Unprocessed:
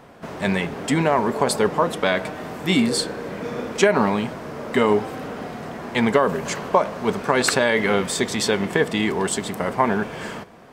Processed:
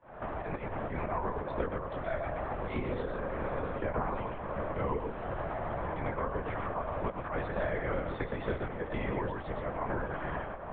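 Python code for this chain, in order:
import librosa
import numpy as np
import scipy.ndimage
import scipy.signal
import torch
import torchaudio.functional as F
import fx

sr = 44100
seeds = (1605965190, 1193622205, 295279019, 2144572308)

y = fx.fade_in_head(x, sr, length_s=1.46)
y = scipy.signal.sosfilt(scipy.signal.butter(2, 320.0, 'highpass', fs=sr, output='sos'), y)
y = fx.low_shelf(y, sr, hz=500.0, db=-6.0)
y = fx.auto_swell(y, sr, attack_ms=204.0)
y = scipy.signal.sosfilt(scipy.signal.butter(2, 1300.0, 'lowpass', fs=sr, output='sos'), y)
y = fx.doubler(y, sr, ms=20.0, db=-9.0)
y = y + 10.0 ** (-5.5 / 20.0) * np.pad(y, (int(118 * sr / 1000.0), 0))[:len(y)]
y = fx.lpc_vocoder(y, sr, seeds[0], excitation='whisper', order=10)
y = fx.band_squash(y, sr, depth_pct=100)
y = y * librosa.db_to_amplitude(-5.5)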